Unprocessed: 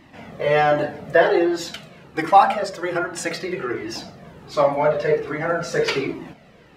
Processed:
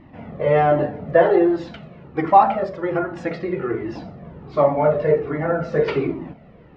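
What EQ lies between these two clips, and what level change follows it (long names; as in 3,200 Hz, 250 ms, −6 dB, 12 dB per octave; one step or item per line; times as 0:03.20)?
head-to-tape spacing loss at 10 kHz 41 dB
low-shelf EQ 170 Hz +4.5 dB
notch filter 1,600 Hz, Q 16
+3.5 dB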